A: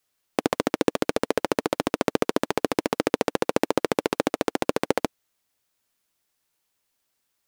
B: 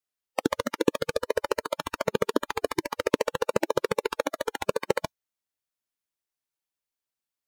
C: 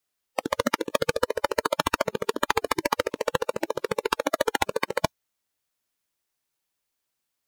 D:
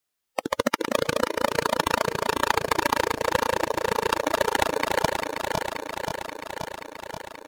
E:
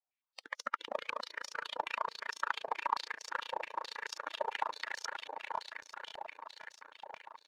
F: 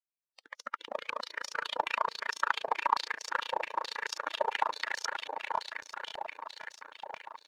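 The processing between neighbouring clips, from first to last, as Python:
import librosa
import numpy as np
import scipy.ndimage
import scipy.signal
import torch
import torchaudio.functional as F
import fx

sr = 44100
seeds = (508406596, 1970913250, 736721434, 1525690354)

y1 = fx.noise_reduce_blind(x, sr, reduce_db=15)
y2 = fx.over_compress(y1, sr, threshold_db=-29.0, ratio=-1.0)
y2 = F.gain(torch.from_numpy(y2), 5.0).numpy()
y3 = fx.reverse_delay_fb(y2, sr, ms=265, feedback_pct=84, wet_db=-5.5)
y4 = fx.filter_held_bandpass(y3, sr, hz=9.1, low_hz=780.0, high_hz=5600.0)
y4 = F.gain(torch.from_numpy(y4), -4.0).numpy()
y5 = fx.fade_in_head(y4, sr, length_s=1.64)
y5 = F.gain(torch.from_numpy(y5), 5.5).numpy()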